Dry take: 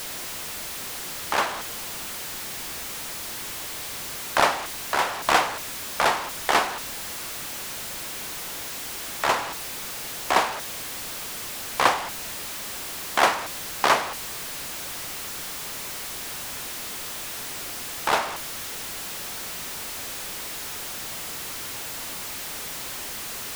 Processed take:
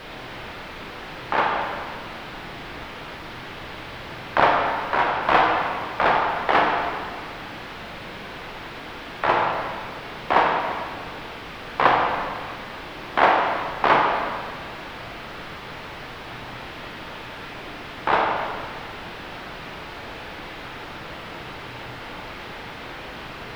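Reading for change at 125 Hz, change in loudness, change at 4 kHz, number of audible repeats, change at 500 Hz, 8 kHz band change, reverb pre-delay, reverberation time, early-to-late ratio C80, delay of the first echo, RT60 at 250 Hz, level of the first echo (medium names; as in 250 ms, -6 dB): +7.0 dB, +2.0 dB, -3.5 dB, no echo, +5.0 dB, under -20 dB, 25 ms, 1.9 s, 3.5 dB, no echo, 1.9 s, no echo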